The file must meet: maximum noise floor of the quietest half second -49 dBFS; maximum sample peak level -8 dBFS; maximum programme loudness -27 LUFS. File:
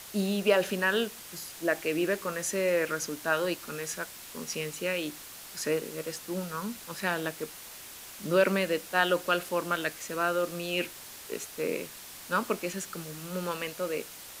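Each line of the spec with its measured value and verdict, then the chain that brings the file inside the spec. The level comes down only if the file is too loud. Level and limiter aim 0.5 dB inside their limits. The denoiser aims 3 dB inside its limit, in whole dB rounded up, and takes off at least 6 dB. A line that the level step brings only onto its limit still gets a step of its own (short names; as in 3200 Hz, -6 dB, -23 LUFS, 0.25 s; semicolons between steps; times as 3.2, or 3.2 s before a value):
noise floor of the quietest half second -46 dBFS: fail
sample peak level -9.5 dBFS: OK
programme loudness -31.0 LUFS: OK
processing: denoiser 6 dB, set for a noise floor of -46 dBFS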